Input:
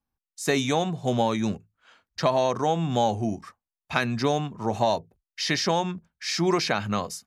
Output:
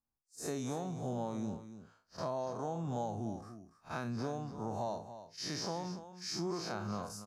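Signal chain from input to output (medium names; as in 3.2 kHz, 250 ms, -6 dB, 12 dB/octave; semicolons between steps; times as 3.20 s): spectral blur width 98 ms; high-order bell 2.6 kHz -11.5 dB 1.3 oct; compression 4:1, threshold -29 dBFS, peak gain reduction 8.5 dB; on a send: delay 287 ms -12 dB; on the sum: trim -6 dB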